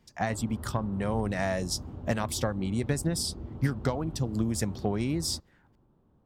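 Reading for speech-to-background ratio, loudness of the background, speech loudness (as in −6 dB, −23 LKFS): 11.0 dB, −42.0 LKFS, −31.0 LKFS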